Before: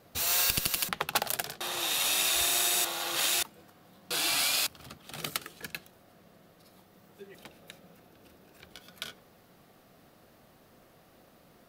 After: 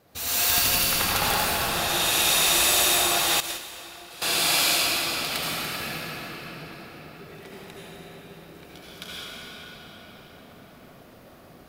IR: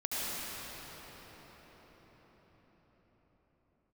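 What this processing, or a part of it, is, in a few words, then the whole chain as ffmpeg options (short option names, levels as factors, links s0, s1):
cathedral: -filter_complex "[1:a]atrim=start_sample=2205[s0];[0:a][s0]afir=irnorm=-1:irlink=0,asettb=1/sr,asplit=3[s1][s2][s3];[s1]atrim=end=3.404[s4];[s2]atrim=start=3.4:end=4.22,asetpts=PTS-STARTPTS,afade=t=in:d=0.004:c=qsin,afade=t=out:st=0.816:d=0.004:c=qsin,agate=range=0.2:threshold=0.0794:ratio=16:detection=peak[s5];[s3]atrim=start=4.216[s6];[s4][s5]acrossfade=d=0.004:c1=hsin:c2=qsin[s7];[s7][s6]acrossfade=d=0.004:c1=qsin:c2=hsin,volume=1.19"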